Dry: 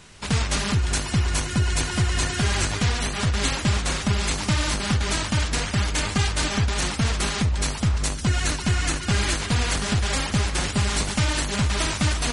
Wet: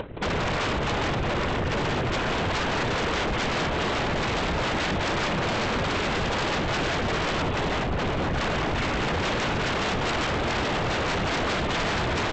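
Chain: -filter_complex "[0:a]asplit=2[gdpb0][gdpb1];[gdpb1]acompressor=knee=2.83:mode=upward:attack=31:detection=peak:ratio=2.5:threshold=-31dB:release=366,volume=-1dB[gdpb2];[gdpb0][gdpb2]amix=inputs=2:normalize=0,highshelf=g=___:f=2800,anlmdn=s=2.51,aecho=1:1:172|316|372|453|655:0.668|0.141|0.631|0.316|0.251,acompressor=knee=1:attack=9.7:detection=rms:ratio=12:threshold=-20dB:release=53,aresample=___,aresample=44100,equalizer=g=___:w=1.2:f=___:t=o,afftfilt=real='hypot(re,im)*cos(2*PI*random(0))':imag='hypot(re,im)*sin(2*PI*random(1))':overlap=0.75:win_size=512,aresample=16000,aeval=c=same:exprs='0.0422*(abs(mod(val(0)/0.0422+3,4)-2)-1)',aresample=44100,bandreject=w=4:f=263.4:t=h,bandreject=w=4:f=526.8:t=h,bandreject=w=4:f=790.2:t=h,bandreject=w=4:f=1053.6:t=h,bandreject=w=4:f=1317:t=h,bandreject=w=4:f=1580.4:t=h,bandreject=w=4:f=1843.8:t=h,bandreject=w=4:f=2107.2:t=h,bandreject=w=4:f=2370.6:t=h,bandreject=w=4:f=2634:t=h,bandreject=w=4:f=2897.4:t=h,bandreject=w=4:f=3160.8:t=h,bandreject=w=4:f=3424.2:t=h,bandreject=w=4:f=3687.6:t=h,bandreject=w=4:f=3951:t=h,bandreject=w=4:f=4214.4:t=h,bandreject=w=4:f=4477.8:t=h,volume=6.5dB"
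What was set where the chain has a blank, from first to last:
-6, 8000, 13.5, 500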